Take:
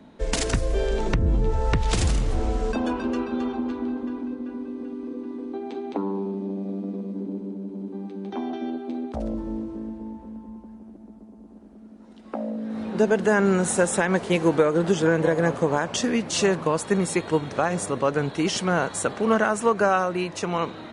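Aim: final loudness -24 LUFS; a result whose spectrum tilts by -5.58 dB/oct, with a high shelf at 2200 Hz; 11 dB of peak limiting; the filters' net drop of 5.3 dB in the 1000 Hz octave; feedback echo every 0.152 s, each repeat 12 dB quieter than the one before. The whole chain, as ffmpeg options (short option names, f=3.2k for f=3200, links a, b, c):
-af "equalizer=f=1k:t=o:g=-6,highshelf=f=2.2k:g=-5.5,alimiter=limit=-20dB:level=0:latency=1,aecho=1:1:152|304|456:0.251|0.0628|0.0157,volume=6.5dB"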